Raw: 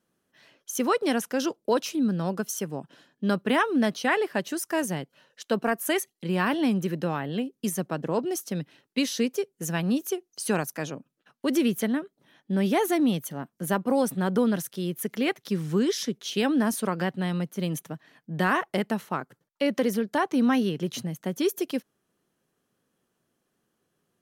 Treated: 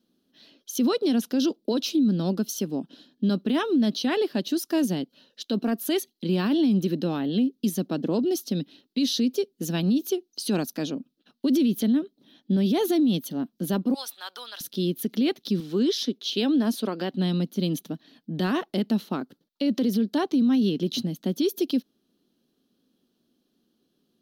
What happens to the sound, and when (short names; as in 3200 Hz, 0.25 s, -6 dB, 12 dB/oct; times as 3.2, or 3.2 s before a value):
13.94–14.61 HPF 950 Hz 24 dB/oct
15.6–17.13 tone controls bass -12 dB, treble -4 dB
whole clip: ten-band EQ 125 Hz -10 dB, 250 Hz +11 dB, 500 Hz -3 dB, 1000 Hz -7 dB, 2000 Hz -11 dB, 4000 Hz +12 dB, 8000 Hz -11 dB; limiter -19 dBFS; gain +3 dB